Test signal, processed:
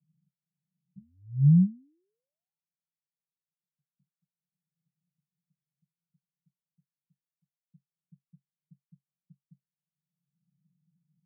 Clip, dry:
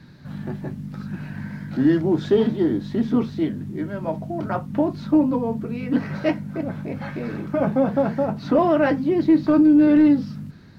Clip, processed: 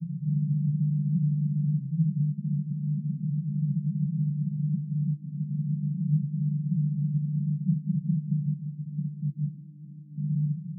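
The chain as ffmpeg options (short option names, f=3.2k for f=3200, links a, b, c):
-filter_complex "[0:a]asplit=2[a][b];[b]acompressor=mode=upward:threshold=-22dB:ratio=2.5,volume=-2.5dB[c];[a][c]amix=inputs=2:normalize=0,asoftclip=type=tanh:threshold=-19.5dB,asuperpass=centerf=160:order=8:qfactor=3.1,volume=5dB"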